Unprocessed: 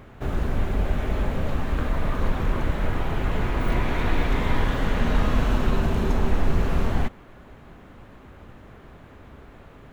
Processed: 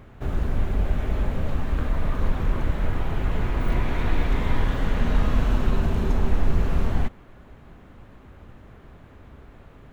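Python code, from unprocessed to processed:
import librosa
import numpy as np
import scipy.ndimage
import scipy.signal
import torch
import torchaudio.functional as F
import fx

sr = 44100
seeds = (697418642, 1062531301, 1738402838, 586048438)

y = fx.low_shelf(x, sr, hz=160.0, db=5.0)
y = F.gain(torch.from_numpy(y), -3.5).numpy()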